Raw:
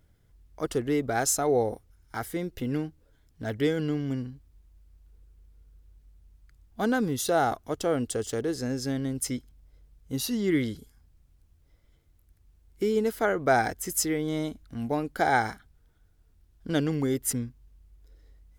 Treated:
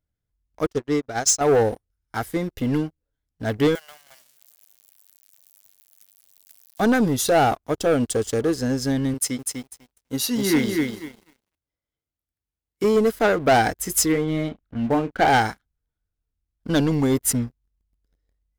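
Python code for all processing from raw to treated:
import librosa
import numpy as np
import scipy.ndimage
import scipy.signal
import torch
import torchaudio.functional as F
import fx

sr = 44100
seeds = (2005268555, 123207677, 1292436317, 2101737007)

y = fx.chain(x, sr, fx.lowpass_res(hz=6000.0, q=2.1),
    fx.upward_expand(threshold_db=-33.0, expansion=2.5), at=(0.66, 1.41))
y = fx.chain(y, sr, fx.crossing_spikes(level_db=-34.0),
    fx.cheby1_highpass(hz=590.0, order=6),
    fx.echo_crushed(ms=312, feedback_pct=55, bits=10, wet_db=-14.5), at=(3.75, 6.8))
y = fx.chain(y, sr, fx.highpass(hz=250.0, slope=6),
    fx.echo_crushed(ms=248, feedback_pct=35, bits=9, wet_db=-3.0), at=(9.14, 12.84))
y = fx.chain(y, sr, fx.lowpass(hz=3200.0, slope=24),
    fx.doubler(ms=31.0, db=-10.0), at=(14.12, 15.28))
y = fx.notch(y, sr, hz=370.0, q=12.0)
y = fx.leveller(y, sr, passes=3)
y = fx.upward_expand(y, sr, threshold_db=-39.0, expansion=1.5)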